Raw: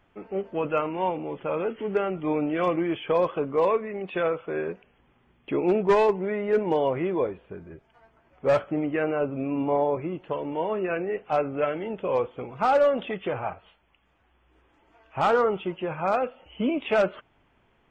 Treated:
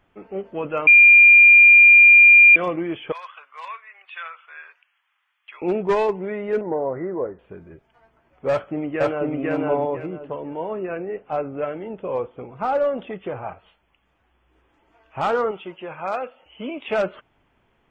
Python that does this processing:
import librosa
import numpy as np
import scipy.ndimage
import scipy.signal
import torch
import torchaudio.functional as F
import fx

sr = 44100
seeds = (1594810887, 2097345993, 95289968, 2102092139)

y = fx.highpass(x, sr, hz=1200.0, slope=24, at=(3.12, 5.62))
y = fx.cheby_ripple(y, sr, hz=2000.0, ripple_db=3, at=(6.61, 7.39))
y = fx.echo_throw(y, sr, start_s=8.5, length_s=0.85, ms=500, feedback_pct=25, wet_db=0.0)
y = fx.high_shelf(y, sr, hz=2300.0, db=-10.0, at=(10.06, 13.49))
y = fx.low_shelf(y, sr, hz=350.0, db=-10.0, at=(15.51, 16.88))
y = fx.edit(y, sr, fx.bleep(start_s=0.87, length_s=1.69, hz=2400.0, db=-6.5), tone=tone)